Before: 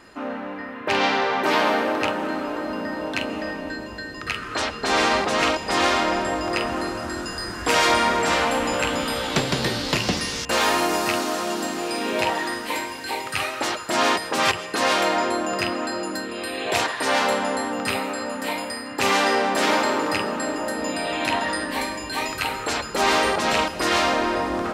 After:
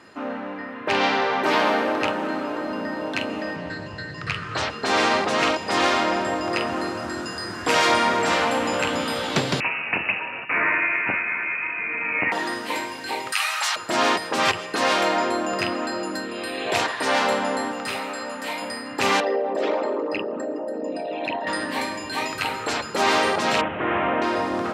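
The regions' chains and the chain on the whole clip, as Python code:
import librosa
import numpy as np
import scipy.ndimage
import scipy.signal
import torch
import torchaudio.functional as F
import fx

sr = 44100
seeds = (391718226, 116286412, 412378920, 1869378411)

y = fx.chain(x, sr, fx.lowpass(hz=9000.0, slope=12),
    fx.low_shelf_res(hz=190.0, db=6.5, q=3.0),
    fx.doppler_dist(depth_ms=0.19), at=(3.56, 4.7))
y = fx.chain(y, sr, fx.freq_invert(carrier_hz=2800),
    fx.highpass(hz=180.0, slope=6), at=(9.6, 12.32))
y = fx.chain(y, sr, fx.highpass(hz=900.0, slope=24),
    fx.high_shelf(hz=4500.0, db=8.5),
    fx.env_flatten(amount_pct=50), at=(13.32, 13.76))
y = fx.chain(y, sr, fx.overload_stage(gain_db=21.5),
    fx.low_shelf(hz=470.0, db=-7.0), at=(17.71, 18.62))
y = fx.chain(y, sr, fx.envelope_sharpen(power=2.0),
    fx.highpass(hz=140.0, slope=12),
    fx.peak_eq(hz=1300.0, db=-9.0, octaves=1.5), at=(19.2, 21.47))
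y = fx.chain(y, sr, fx.delta_mod(bps=16000, step_db=-22.0),
    fx.air_absorb(metres=300.0), at=(23.61, 24.22))
y = scipy.signal.sosfilt(scipy.signal.butter(4, 87.0, 'highpass', fs=sr, output='sos'), y)
y = fx.high_shelf(y, sr, hz=9900.0, db=-9.0)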